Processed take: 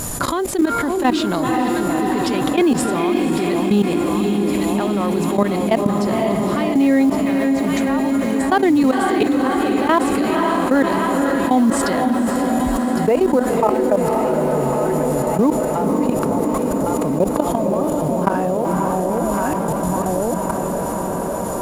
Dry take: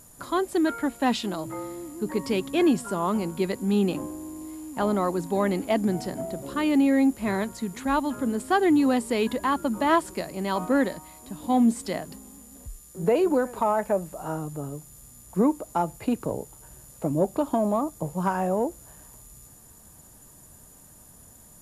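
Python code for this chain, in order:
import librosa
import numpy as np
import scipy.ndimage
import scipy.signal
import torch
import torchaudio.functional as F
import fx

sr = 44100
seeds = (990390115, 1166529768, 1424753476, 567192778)

p1 = fx.mod_noise(x, sr, seeds[0], snr_db=30)
p2 = fx.high_shelf(p1, sr, hz=9800.0, db=-7.0)
p3 = p2 + fx.echo_alternate(p2, sr, ms=554, hz=860.0, feedback_pct=65, wet_db=-8, dry=0)
p4 = fx.level_steps(p3, sr, step_db=21)
p5 = fx.echo_diffused(p4, sr, ms=517, feedback_pct=70, wet_db=-10.5)
p6 = fx.env_flatten(p5, sr, amount_pct=70)
y = p6 * 10.0 ** (7.0 / 20.0)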